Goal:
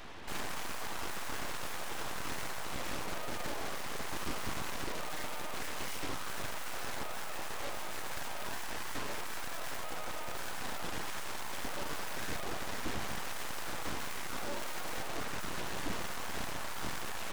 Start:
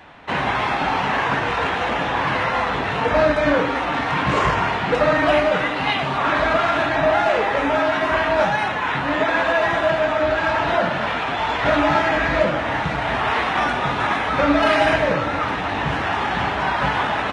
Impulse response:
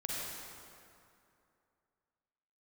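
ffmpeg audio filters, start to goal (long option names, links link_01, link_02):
-af "aeval=exprs='(tanh(50.1*val(0)+0.05)-tanh(0.05))/50.1':channel_layout=same,bass=frequency=250:gain=11,treble=frequency=4000:gain=7,aeval=exprs='abs(val(0))':channel_layout=same,volume=-3dB"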